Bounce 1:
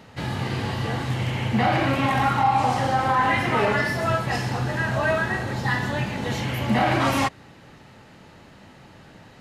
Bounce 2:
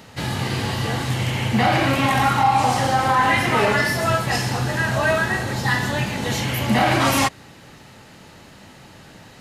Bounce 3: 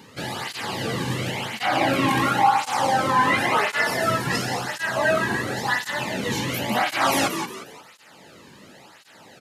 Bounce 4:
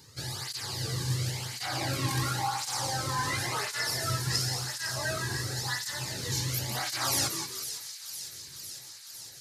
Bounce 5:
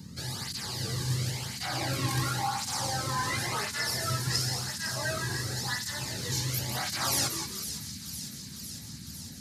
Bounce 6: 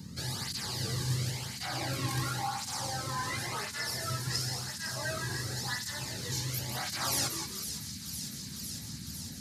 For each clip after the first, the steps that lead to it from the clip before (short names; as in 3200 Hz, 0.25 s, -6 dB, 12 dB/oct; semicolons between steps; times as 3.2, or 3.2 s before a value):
high shelf 4500 Hz +10.5 dB; gain +2.5 dB
frequency-shifting echo 0.177 s, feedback 36%, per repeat +56 Hz, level -8 dB; tape flanging out of phase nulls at 0.94 Hz, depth 1.6 ms
EQ curve 130 Hz 0 dB, 210 Hz -20 dB, 350 Hz -11 dB, 630 Hz -16 dB, 1600 Hz -11 dB, 2900 Hz -14 dB, 4600 Hz +2 dB, 9900 Hz 0 dB; thin delay 0.505 s, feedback 74%, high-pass 3400 Hz, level -8.5 dB
band noise 69–240 Hz -46 dBFS
vocal rider within 4 dB 2 s; gain -3 dB